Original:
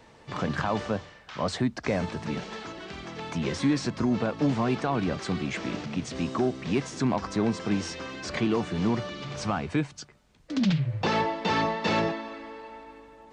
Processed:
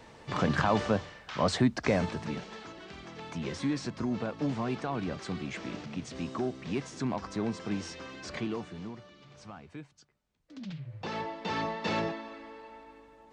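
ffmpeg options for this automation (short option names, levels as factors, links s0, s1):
-af "volume=5.01,afade=t=out:st=1.8:d=0.66:silence=0.398107,afade=t=out:st=8.29:d=0.65:silence=0.266073,afade=t=in:st=10.64:d=1.21:silence=0.237137"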